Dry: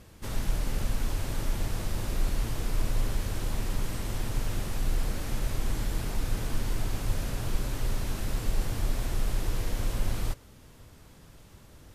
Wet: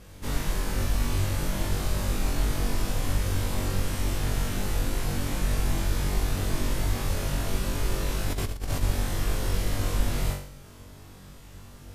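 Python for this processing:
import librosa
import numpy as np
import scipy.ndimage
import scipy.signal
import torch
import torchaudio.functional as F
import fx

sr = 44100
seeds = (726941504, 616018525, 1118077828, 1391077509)

y = fx.room_flutter(x, sr, wall_m=3.6, rt60_s=0.54)
y = fx.over_compress(y, sr, threshold_db=-28.0, ratio=-0.5, at=(8.29, 8.81), fade=0.02)
y = y * librosa.db_to_amplitude(1.5)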